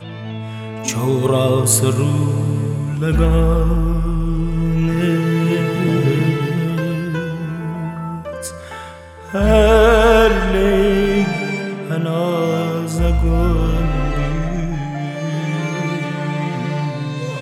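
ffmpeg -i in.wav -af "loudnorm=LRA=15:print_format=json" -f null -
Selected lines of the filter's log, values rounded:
"input_i" : "-18.1",
"input_tp" : "-0.4",
"input_lra" : "7.4",
"input_thresh" : "-28.3",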